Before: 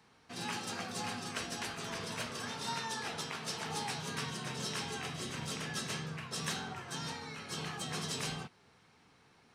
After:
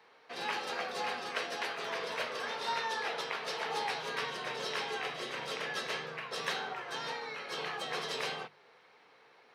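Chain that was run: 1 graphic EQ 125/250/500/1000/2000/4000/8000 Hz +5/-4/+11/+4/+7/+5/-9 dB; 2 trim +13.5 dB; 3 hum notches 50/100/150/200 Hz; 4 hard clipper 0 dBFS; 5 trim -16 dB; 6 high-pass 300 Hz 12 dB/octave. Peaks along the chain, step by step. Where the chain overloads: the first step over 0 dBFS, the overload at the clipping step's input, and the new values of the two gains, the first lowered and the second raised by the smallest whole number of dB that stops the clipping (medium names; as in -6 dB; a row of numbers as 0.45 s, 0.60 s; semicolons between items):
-17.0 dBFS, -3.5 dBFS, -3.0 dBFS, -3.0 dBFS, -19.0 dBFS, -19.5 dBFS; nothing clips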